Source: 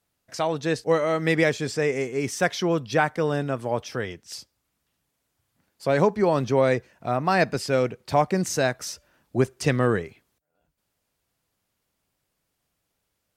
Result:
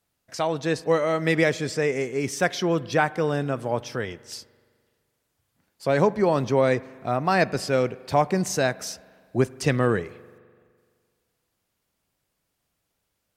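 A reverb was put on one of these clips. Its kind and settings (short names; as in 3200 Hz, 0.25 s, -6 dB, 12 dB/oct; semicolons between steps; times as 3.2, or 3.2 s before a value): spring tank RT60 1.9 s, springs 42 ms, chirp 40 ms, DRR 19.5 dB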